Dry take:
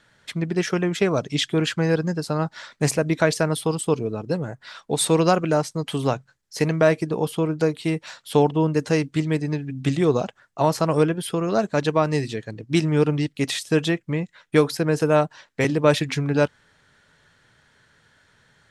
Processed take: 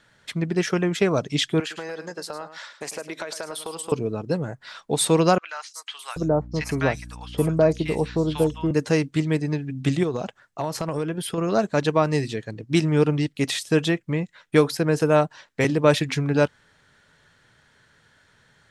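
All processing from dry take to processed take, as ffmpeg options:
ffmpeg -i in.wav -filter_complex "[0:a]asettb=1/sr,asplit=3[link_01][link_02][link_03];[link_01]atrim=end=1.604[link_04];[link_02]atrim=start=1.6:end=3.92,asetpts=PTS-STARTPTS,afade=type=in:duration=0.004:curve=qsin,afade=type=out:start_time=2.316:duration=0.004:curve=qsin,highpass=480,acompressor=threshold=-28dB:ratio=10:attack=3.2:release=140:knee=1:detection=peak,aecho=1:1:106:0.266,atrim=end_sample=102312[link_05];[link_03]atrim=start=3.916[link_06];[link_04][link_05]acrossfade=duration=0.004:curve1=hsin:curve2=qsin[link_07];[link_07][link_06]acrossfade=duration=0.004:curve1=qsin:curve2=hsin,asettb=1/sr,asplit=3[link_08][link_09][link_10];[link_08]atrim=end=5.384[link_11];[link_09]atrim=start=5.38:end=8.71,asetpts=PTS-STARTPTS,afade=type=in:duration=0.004:curve=qsin,afade=type=out:start_time=3.326:duration=0.004:curve=qsin,agate=range=-7dB:threshold=-43dB:ratio=16:release=100:detection=peak,aeval=exprs='val(0)+0.0126*(sin(2*PI*60*n/s)+sin(2*PI*2*60*n/s)/2+sin(2*PI*3*60*n/s)/3+sin(2*PI*4*60*n/s)/4+sin(2*PI*5*60*n/s)/5)':channel_layout=same,acrossover=split=1100|5200[link_12][link_13][link_14];[link_14]adelay=110[link_15];[link_12]adelay=780[link_16];[link_16][link_13][link_15]amix=inputs=3:normalize=0,atrim=end_sample=146853[link_17];[link_10]atrim=start=8.706[link_18];[link_11][link_17]acrossfade=duration=0.004:curve1=hsin:curve2=qsin[link_19];[link_19][link_18]acrossfade=duration=0.004:curve1=qsin:curve2=hsin,asettb=1/sr,asplit=3[link_20][link_21][link_22];[link_20]atrim=end=10.034[link_23];[link_21]atrim=start=10.03:end=11.38,asetpts=PTS-STARTPTS,afade=type=in:duration=0.004:curve=qsin,afade=type=out:start_time=1.346:duration=0.004:curve=qsin,acompressor=threshold=-22dB:ratio=5:attack=3.2:release=140:knee=1:detection=peak,asoftclip=type=hard:threshold=-16.5dB[link_24];[link_22]atrim=start=11.376[link_25];[link_23][link_24]acrossfade=duration=0.004:curve1=hsin:curve2=qsin[link_26];[link_26][link_25]acrossfade=duration=0.004:curve1=qsin:curve2=hsin" out.wav

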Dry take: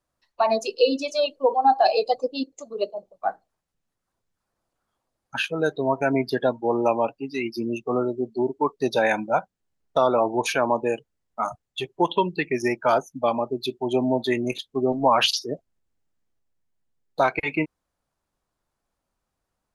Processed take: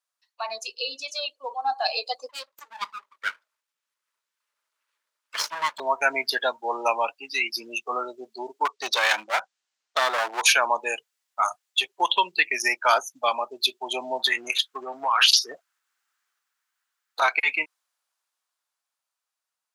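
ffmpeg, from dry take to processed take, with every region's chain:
ffmpeg -i in.wav -filter_complex "[0:a]asettb=1/sr,asplit=3[link_01][link_02][link_03];[link_01]atrim=end=2.294[link_04];[link_02]atrim=start=2.29:end=5.8,asetpts=PTS-STARTPTS,afade=type=in:duration=0.004:curve=qsin,afade=type=out:start_time=3.506:duration=0.004:curve=qsin,aeval=exprs='abs(val(0))':channel_layout=same,asuperstop=centerf=750:order=4:qfactor=4.8,highshelf=frequency=3000:gain=-9[link_05];[link_03]atrim=start=5.796[link_06];[link_04][link_05]acrossfade=duration=0.004:curve1=hsin:curve2=qsin[link_07];[link_07][link_06]acrossfade=duration=0.004:curve1=qsin:curve2=hsin,asettb=1/sr,asplit=3[link_08][link_09][link_10];[link_08]atrim=end=8.654[link_11];[link_09]atrim=start=8.65:end=10.42,asetpts=PTS-STARTPTS,afade=type=in:duration=0.004:curve=qsin,afade=type=out:start_time=1.766:duration=0.004:curve=qsin,lowpass=frequency=7500:width=0.5412,lowpass=frequency=7500:width=1.3066,aeval=exprs='clip(val(0),-1,0.0422)':channel_layout=same[link_12];[link_10]atrim=start=10.416[link_13];[link_11][link_12]acrossfade=duration=0.004:curve1=hsin:curve2=qsin[link_14];[link_14][link_13]acrossfade=duration=0.004:curve1=qsin:curve2=hsin,asettb=1/sr,asplit=3[link_15][link_16][link_17];[link_15]atrim=end=14.194[link_18];[link_16]atrim=start=14.19:end=17.22,asetpts=PTS-STARTPTS,afade=type=in:duration=0.004:curve=qsin,afade=type=out:start_time=3.026:duration=0.004:curve=qsin,equalizer=frequency=1400:width_type=o:width=1:gain=11.5,bandreject=frequency=600:width=8.4,acompressor=threshold=-22dB:ratio=5:attack=3.2:release=140:knee=1:detection=peak[link_19];[link_17]atrim=start=17.216[link_20];[link_18][link_19]acrossfade=duration=0.004:curve1=hsin:curve2=qsin[link_21];[link_21][link_20]acrossfade=duration=0.004:curve1=qsin:curve2=hsin,highpass=1500,equalizer=frequency=1900:width=1.5:gain=-2.5,dynaudnorm=framelen=450:gausssize=11:maxgain=11.5dB" out.wav

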